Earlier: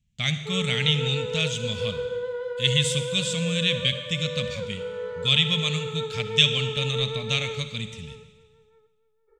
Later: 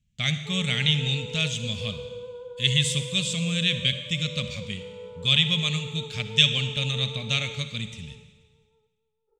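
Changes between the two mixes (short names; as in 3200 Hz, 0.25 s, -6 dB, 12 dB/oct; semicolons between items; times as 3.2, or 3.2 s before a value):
background: add ladder low-pass 960 Hz, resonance 65%; master: add bell 930 Hz -7 dB 0.23 oct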